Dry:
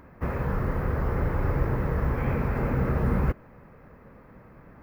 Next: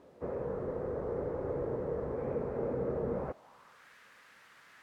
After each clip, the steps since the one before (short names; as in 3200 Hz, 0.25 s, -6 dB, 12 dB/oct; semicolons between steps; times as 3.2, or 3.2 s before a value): low shelf 160 Hz +5 dB; requantised 8-bit, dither triangular; band-pass sweep 480 Hz -> 1700 Hz, 3.1–3.88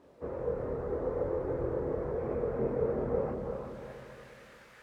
multi-head echo 0.118 s, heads second and third, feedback 52%, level -6.5 dB; chorus voices 6, 0.69 Hz, delay 25 ms, depth 2.1 ms; gain +3 dB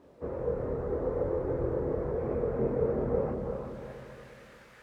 low shelf 430 Hz +4 dB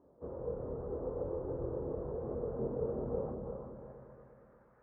LPF 1200 Hz 24 dB/oct; gain -7.5 dB